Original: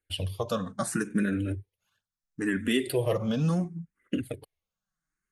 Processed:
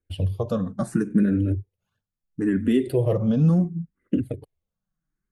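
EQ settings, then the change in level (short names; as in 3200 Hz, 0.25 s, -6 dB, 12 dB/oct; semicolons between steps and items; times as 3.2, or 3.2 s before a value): tilt shelf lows +9 dB, about 800 Hz; 0.0 dB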